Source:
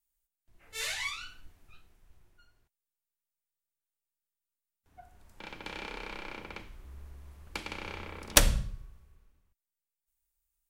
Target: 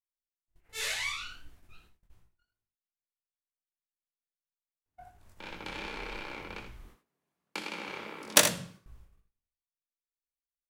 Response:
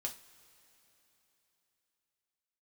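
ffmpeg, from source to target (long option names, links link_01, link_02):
-filter_complex "[0:a]asettb=1/sr,asplit=3[link_01][link_02][link_03];[link_01]atrim=end=6.854[link_04];[link_02]atrim=start=6.85:end=8.86,asetpts=PTS-STARTPTS,afade=type=in:duration=0.004:curve=qsin,afade=type=out:start_time=2.006:duration=0.004:curve=qsin,highpass=frequency=160:width=0.5412,highpass=frequency=160:width=1.3066[link_05];[link_03]atrim=start=8.856[link_06];[link_04][link_05]acrossfade=duration=0.004:curve1=hsin:curve2=qsin[link_07];[link_07][link_06]acrossfade=duration=0.004:curve1=qsin:curve2=hsin,agate=range=-24dB:threshold=-56dB:ratio=16:detection=peak,flanger=delay=17:depth=6.3:speed=2.7,aecho=1:1:62|80:0.251|0.299,volume=4dB"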